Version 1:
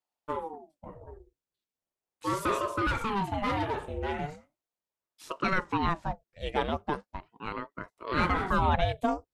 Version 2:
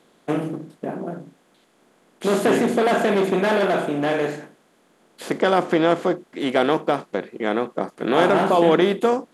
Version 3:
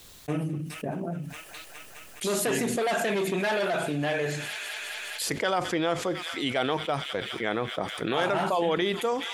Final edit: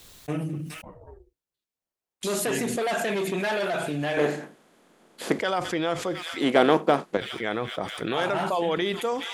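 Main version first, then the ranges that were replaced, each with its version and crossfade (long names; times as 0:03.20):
3
0:00.82–0:02.23: punch in from 1
0:04.17–0:05.39: punch in from 2
0:06.41–0:07.17: punch in from 2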